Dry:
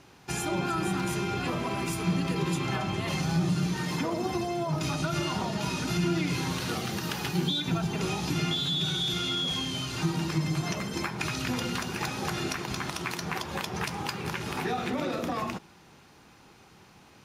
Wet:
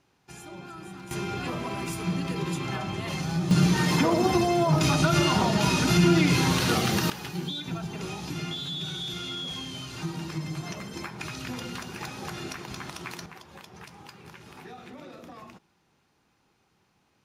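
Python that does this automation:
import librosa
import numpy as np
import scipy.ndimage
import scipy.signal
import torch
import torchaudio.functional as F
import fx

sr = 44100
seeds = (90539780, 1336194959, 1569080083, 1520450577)

y = fx.gain(x, sr, db=fx.steps((0.0, -13.0), (1.11, -1.5), (3.51, 7.5), (7.1, -5.0), (13.26, -14.0)))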